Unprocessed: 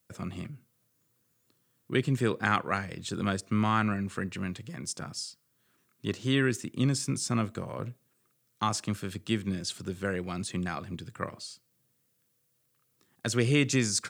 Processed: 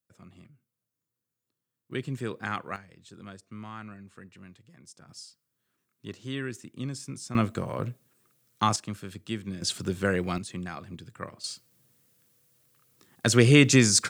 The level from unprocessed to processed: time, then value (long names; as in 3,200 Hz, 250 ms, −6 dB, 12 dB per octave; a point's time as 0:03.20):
−14.5 dB
from 0:01.91 −6 dB
from 0:02.76 −15 dB
from 0:05.09 −8 dB
from 0:07.35 +4.5 dB
from 0:08.76 −4 dB
from 0:09.62 +5.5 dB
from 0:10.38 −3.5 dB
from 0:11.44 +7.5 dB